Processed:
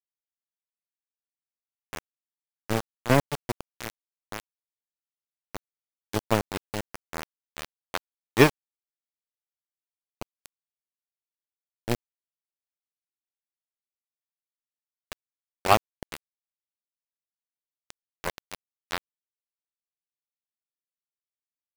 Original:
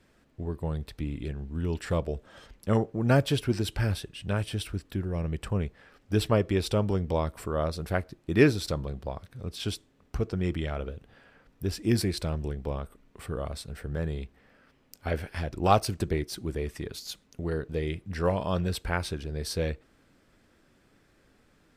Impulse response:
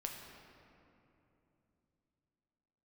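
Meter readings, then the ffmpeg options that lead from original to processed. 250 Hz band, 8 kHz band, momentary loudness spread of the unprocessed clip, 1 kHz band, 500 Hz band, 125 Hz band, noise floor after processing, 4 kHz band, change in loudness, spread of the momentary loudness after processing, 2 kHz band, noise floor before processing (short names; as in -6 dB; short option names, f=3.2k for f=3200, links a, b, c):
-4.5 dB, -0.5 dB, 14 LU, +1.5 dB, -3.0 dB, -7.5 dB, under -85 dBFS, -1.5 dB, +2.5 dB, 22 LU, +2.0 dB, -65 dBFS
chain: -af "aeval=exprs='0.501*(cos(1*acos(clip(val(0)/0.501,-1,1)))-cos(1*PI/2))+0.00708*(cos(4*acos(clip(val(0)/0.501,-1,1)))-cos(4*PI/2))+0.00708*(cos(6*acos(clip(val(0)/0.501,-1,1)))-cos(6*PI/2))+0.0891*(cos(7*acos(clip(val(0)/0.501,-1,1)))-cos(7*PI/2))':c=same,acrusher=bits=4:mix=0:aa=0.000001,volume=3dB"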